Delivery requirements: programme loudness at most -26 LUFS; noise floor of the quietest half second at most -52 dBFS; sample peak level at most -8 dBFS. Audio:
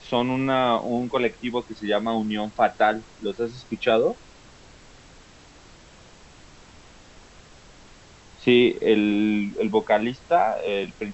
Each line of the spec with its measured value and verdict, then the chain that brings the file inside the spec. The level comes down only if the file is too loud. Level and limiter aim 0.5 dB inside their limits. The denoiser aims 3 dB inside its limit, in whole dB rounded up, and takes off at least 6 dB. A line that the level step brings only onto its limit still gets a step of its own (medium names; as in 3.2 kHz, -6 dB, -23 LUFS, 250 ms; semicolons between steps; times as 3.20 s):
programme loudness -23.0 LUFS: fail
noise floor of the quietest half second -49 dBFS: fail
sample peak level -6.5 dBFS: fail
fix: trim -3.5 dB